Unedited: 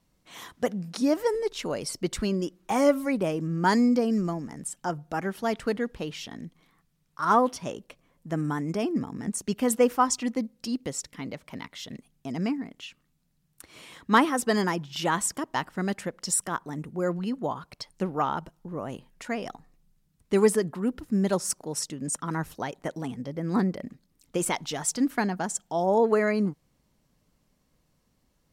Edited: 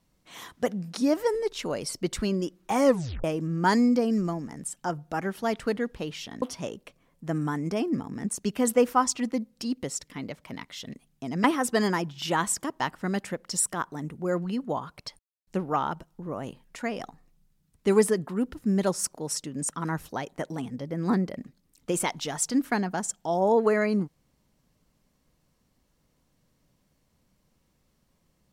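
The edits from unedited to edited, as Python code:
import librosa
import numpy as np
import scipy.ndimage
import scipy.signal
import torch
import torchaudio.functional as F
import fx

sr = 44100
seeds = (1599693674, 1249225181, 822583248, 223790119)

y = fx.edit(x, sr, fx.tape_stop(start_s=2.86, length_s=0.38),
    fx.cut(start_s=6.42, length_s=1.03),
    fx.cut(start_s=12.47, length_s=1.71),
    fx.insert_silence(at_s=17.93, length_s=0.28), tone=tone)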